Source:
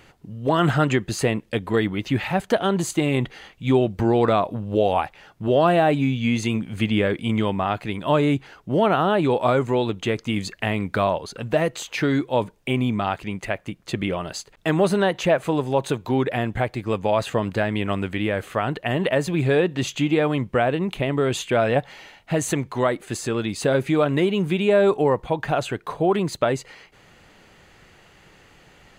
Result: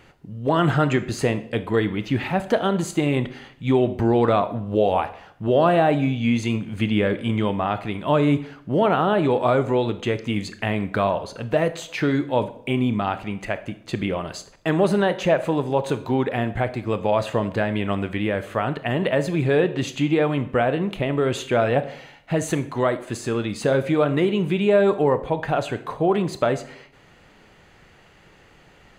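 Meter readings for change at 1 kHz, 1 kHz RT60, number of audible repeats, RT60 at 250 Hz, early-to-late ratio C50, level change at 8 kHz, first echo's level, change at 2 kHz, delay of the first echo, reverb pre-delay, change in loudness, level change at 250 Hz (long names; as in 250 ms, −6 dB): 0.0 dB, 0.65 s, no echo audible, 0.75 s, 14.5 dB, −4.0 dB, no echo audible, −1.0 dB, no echo audible, 22 ms, 0.0 dB, +0.5 dB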